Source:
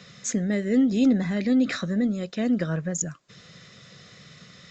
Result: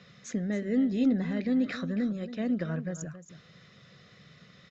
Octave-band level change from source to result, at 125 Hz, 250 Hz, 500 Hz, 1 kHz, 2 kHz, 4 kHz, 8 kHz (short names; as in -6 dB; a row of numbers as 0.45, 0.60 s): -5.5, -5.5, -5.5, -6.0, -6.5, -9.0, -15.5 dB